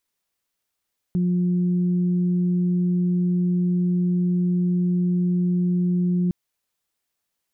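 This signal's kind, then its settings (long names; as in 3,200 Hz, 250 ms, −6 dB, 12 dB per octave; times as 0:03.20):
steady harmonic partials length 5.16 s, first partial 178 Hz, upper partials −15 dB, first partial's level −18 dB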